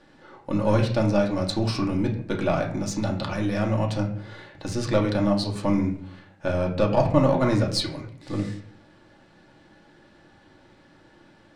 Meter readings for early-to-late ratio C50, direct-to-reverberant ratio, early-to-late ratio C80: 9.0 dB, −1.0 dB, 12.0 dB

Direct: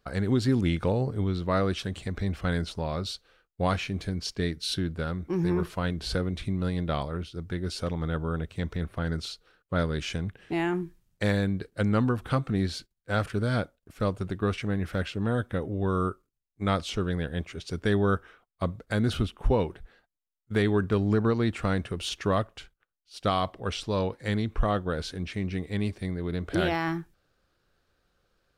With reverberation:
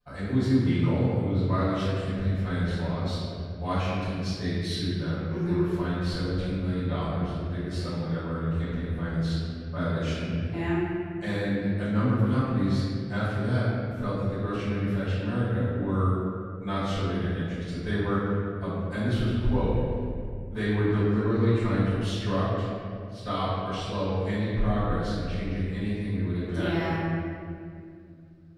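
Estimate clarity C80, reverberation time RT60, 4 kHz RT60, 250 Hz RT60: −1.0 dB, 2.2 s, 1.4 s, 3.4 s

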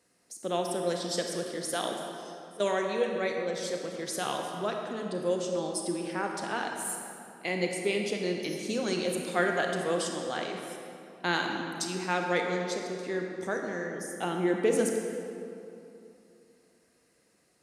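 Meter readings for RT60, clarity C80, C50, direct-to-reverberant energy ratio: 2.8 s, 3.5 dB, 2.5 dB, 1.5 dB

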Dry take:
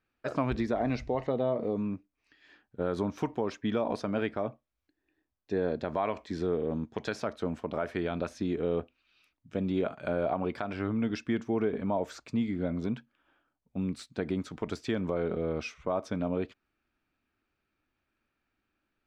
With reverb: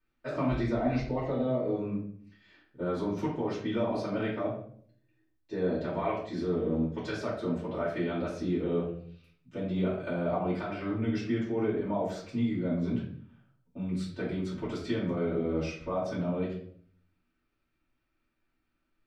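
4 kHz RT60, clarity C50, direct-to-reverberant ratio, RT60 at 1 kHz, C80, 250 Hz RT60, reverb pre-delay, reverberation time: 0.45 s, 4.5 dB, −10.0 dB, 0.50 s, 8.5 dB, 0.80 s, 3 ms, 0.60 s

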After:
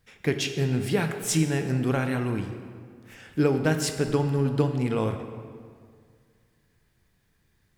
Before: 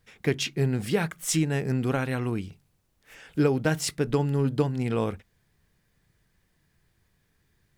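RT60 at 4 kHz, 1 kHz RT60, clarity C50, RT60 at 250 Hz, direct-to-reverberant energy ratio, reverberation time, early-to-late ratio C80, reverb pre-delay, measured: 1.3 s, 2.0 s, 8.0 dB, 2.1 s, 6.5 dB, 2.0 s, 9.0 dB, 14 ms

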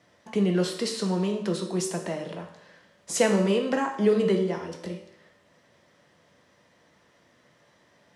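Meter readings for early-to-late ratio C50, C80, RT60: 8.0 dB, 10.5 dB, 0.75 s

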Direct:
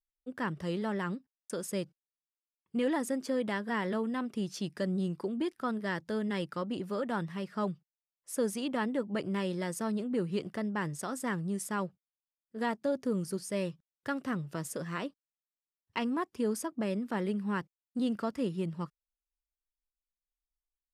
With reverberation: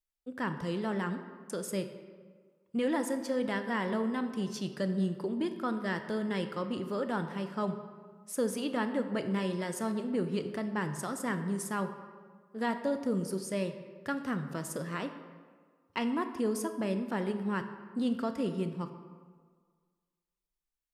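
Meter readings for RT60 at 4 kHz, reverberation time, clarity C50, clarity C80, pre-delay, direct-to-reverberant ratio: 0.95 s, 1.7 s, 9.5 dB, 10.5 dB, 19 ms, 8.0 dB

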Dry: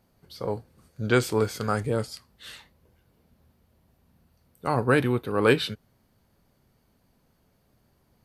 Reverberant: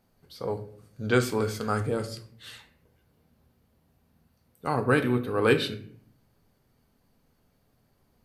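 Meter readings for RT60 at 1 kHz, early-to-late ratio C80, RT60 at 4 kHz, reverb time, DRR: 0.50 s, 16.0 dB, 0.40 s, 0.60 s, 7.0 dB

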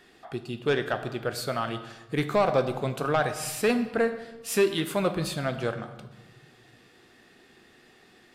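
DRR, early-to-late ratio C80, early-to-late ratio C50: 9.0 dB, 13.0 dB, 11.5 dB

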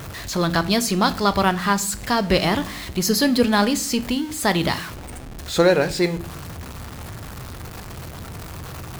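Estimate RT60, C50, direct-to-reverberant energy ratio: non-exponential decay, 18.5 dB, 11.5 dB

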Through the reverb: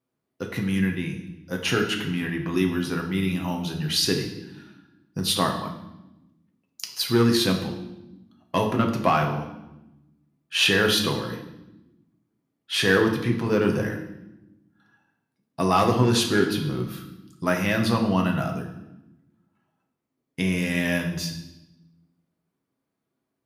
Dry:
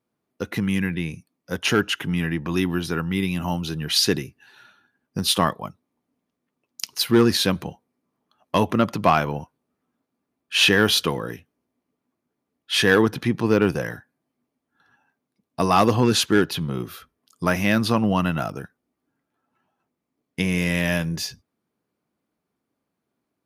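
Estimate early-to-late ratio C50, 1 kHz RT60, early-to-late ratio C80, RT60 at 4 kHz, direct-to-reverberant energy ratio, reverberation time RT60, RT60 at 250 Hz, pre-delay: 7.5 dB, 0.90 s, 10.0 dB, 0.85 s, 1.5 dB, 1.0 s, 1.7 s, 6 ms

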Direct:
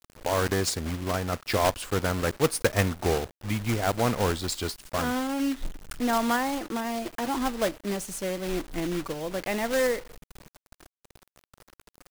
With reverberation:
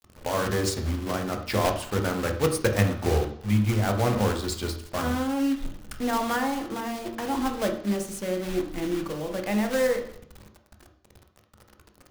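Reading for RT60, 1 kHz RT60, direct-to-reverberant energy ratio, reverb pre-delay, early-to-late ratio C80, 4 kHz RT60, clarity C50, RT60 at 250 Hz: 0.60 s, 0.55 s, 4.0 dB, 3 ms, 12.5 dB, 0.70 s, 8.5 dB, 0.60 s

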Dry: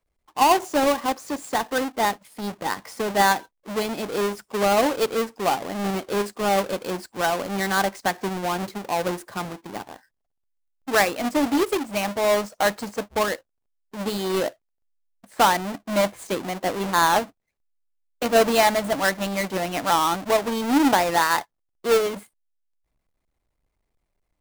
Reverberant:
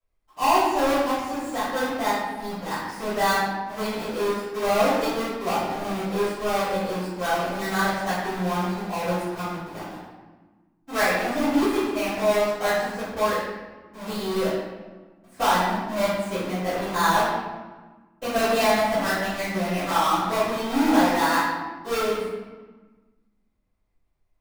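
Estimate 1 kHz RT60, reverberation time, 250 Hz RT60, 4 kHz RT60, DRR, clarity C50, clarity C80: 1.3 s, 1.3 s, 1.9 s, 0.85 s, −18.0 dB, −1.0 dB, 2.0 dB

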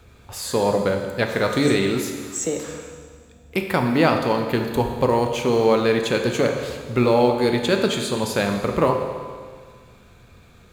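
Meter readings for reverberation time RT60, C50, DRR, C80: 1.8 s, 5.5 dB, 3.5 dB, 6.5 dB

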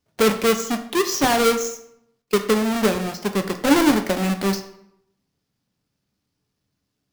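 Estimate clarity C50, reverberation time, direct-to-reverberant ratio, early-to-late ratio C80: 11.0 dB, 0.75 s, 6.5 dB, 13.5 dB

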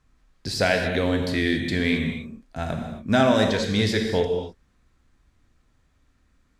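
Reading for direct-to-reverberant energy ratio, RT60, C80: 3.5 dB, non-exponential decay, 6.0 dB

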